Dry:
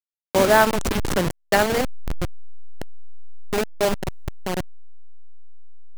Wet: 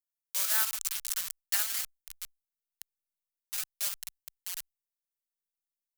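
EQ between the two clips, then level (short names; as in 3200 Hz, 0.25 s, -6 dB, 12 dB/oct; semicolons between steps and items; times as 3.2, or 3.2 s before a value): pre-emphasis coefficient 0.97; passive tone stack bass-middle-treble 10-0-10; dynamic EQ 1300 Hz, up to +6 dB, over -56 dBFS, Q 2.7; 0.0 dB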